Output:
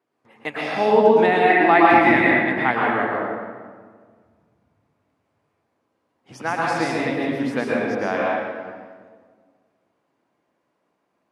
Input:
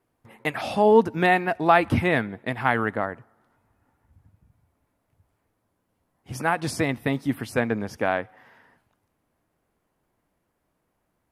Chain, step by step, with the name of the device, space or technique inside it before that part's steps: supermarket ceiling speaker (BPF 230–6300 Hz; reverb RT60 1.7 s, pre-delay 0.106 s, DRR -5 dB); 1.5–2.71 thirty-one-band EQ 315 Hz +7 dB, 500 Hz -5 dB, 800 Hz +5 dB, 2000 Hz +10 dB; gain -2 dB

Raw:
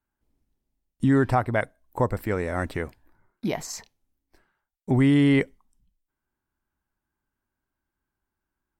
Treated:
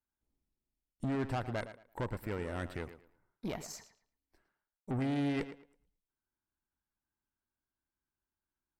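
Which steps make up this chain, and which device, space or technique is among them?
rockabilly slapback (tube stage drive 23 dB, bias 0.65; tape echo 0.11 s, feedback 25%, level -11 dB, low-pass 4600 Hz); gain -7.5 dB

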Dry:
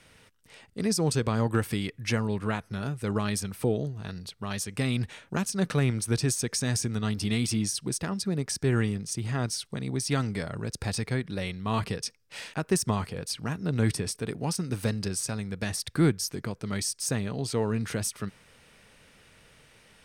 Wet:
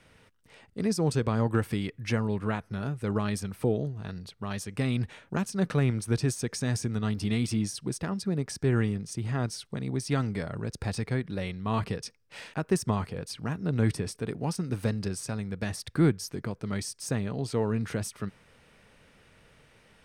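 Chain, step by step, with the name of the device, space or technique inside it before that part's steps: behind a face mask (high shelf 2800 Hz -8 dB)

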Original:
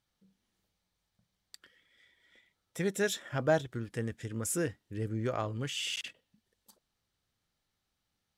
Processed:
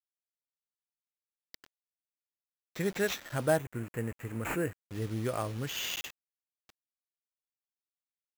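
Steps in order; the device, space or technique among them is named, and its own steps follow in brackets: early 8-bit sampler (sample-rate reducer 9600 Hz, jitter 0%; bit-crush 8-bit); 3.57–4.81 band shelf 4400 Hz -14.5 dB 1.1 oct

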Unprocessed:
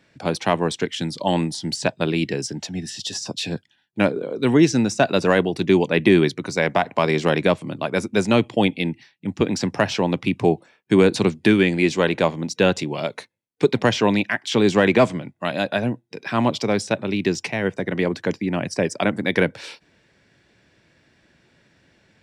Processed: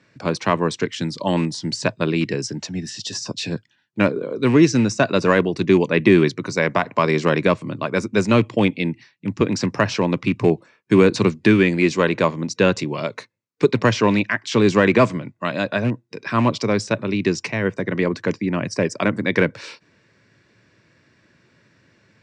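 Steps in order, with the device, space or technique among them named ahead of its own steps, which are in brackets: car door speaker with a rattle (rattling part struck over -20 dBFS, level -24 dBFS; speaker cabinet 89–7600 Hz, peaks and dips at 110 Hz +6 dB, 770 Hz -8 dB, 1100 Hz +5 dB, 3300 Hz -6 dB); gain +1.5 dB

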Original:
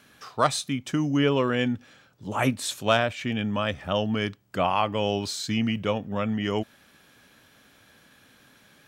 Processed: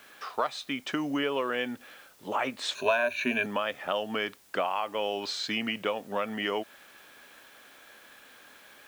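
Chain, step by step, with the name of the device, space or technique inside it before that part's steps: baby monitor (BPF 440–3600 Hz; compressor, threshold -31 dBFS, peak gain reduction 14.5 dB; white noise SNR 27 dB); 2.75–3.46 ripple EQ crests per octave 1.5, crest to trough 18 dB; gain +5 dB

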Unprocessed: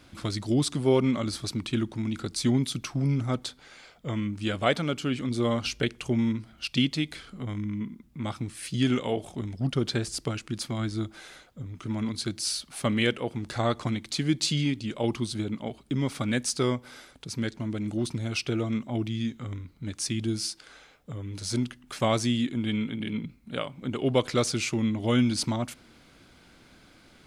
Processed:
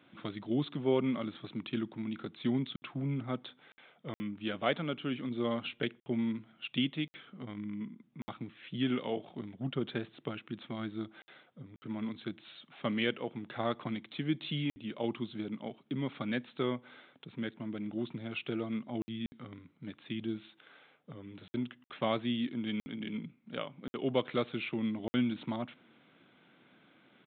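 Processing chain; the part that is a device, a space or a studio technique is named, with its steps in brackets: call with lost packets (HPF 140 Hz 24 dB/oct; downsampling 8000 Hz; packet loss packets of 60 ms random); gain -6.5 dB

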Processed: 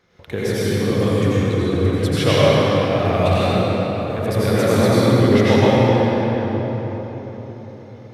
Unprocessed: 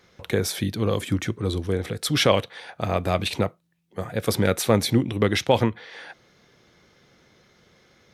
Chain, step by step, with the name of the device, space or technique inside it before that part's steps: swimming-pool hall (reverb RT60 4.4 s, pre-delay 80 ms, DRR -10 dB; high shelf 3500 Hz -7 dB); gain -3 dB

